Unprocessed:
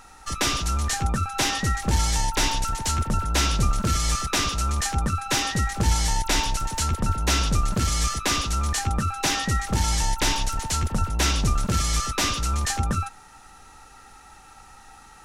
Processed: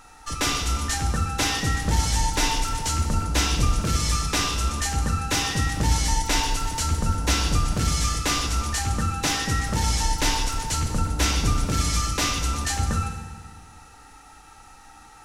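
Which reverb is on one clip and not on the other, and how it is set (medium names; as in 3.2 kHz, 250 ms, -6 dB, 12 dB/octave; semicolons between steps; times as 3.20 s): FDN reverb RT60 1.5 s, low-frequency decay 1.25×, high-frequency decay 0.95×, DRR 3.5 dB; trim -1.5 dB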